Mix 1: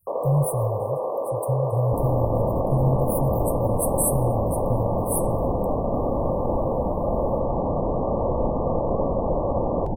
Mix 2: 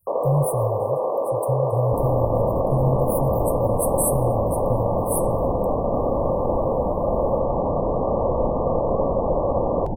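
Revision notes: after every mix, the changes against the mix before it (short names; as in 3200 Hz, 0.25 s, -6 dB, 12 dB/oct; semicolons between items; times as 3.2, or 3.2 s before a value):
first sound +3.5 dB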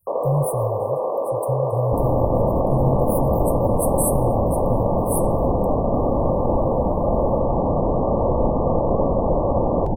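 second sound +4.5 dB; reverb: off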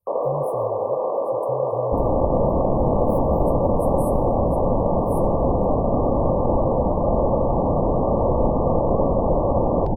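speech -10.5 dB; master: add resonant high shelf 5800 Hz -6 dB, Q 3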